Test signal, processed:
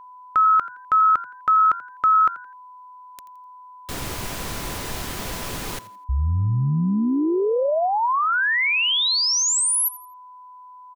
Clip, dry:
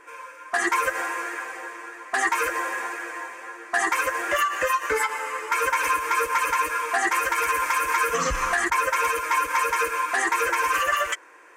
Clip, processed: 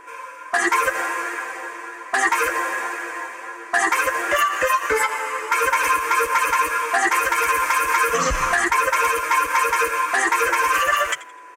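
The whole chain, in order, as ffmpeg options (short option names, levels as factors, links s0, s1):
-filter_complex "[0:a]asplit=4[s0][s1][s2][s3];[s1]adelay=84,afreqshift=91,volume=0.133[s4];[s2]adelay=168,afreqshift=182,volume=0.0427[s5];[s3]adelay=252,afreqshift=273,volume=0.0136[s6];[s0][s4][s5][s6]amix=inputs=4:normalize=0,aeval=exprs='val(0)+0.00562*sin(2*PI*1000*n/s)':c=same,volume=1.58"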